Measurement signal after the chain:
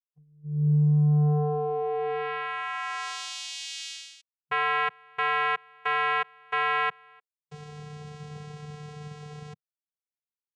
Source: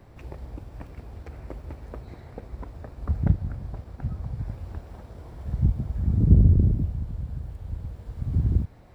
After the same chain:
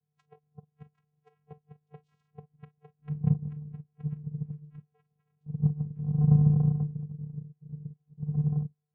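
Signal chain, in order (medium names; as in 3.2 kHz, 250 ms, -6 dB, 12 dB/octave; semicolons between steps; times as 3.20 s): spectral noise reduction 28 dB; vocoder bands 4, square 149 Hz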